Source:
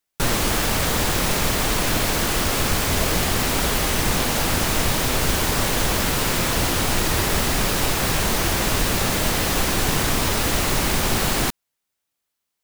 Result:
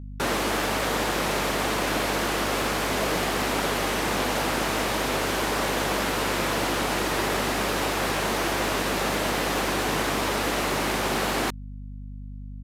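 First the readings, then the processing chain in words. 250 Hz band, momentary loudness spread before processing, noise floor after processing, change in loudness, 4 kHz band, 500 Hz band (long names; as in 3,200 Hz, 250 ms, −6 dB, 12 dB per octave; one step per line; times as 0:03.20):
−3.5 dB, 0 LU, −37 dBFS, −4.5 dB, −5.5 dB, −0.5 dB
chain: high-pass filter 260 Hz 12 dB per octave
high-shelf EQ 3,700 Hz −10.5 dB
mains hum 50 Hz, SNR 11 dB
downsampling to 32,000 Hz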